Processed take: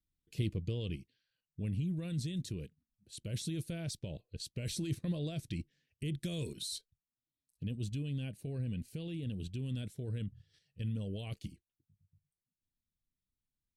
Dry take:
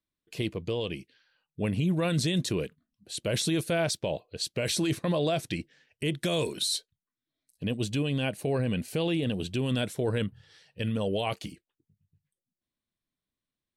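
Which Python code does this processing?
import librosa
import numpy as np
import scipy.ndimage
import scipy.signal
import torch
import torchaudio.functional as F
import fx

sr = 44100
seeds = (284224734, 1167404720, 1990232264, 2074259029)

p1 = fx.level_steps(x, sr, step_db=19)
p2 = x + (p1 * 10.0 ** (3.0 / 20.0))
p3 = fx.tone_stack(p2, sr, knobs='10-0-1')
p4 = fx.rider(p3, sr, range_db=10, speed_s=2.0)
y = p4 * 10.0 ** (4.0 / 20.0)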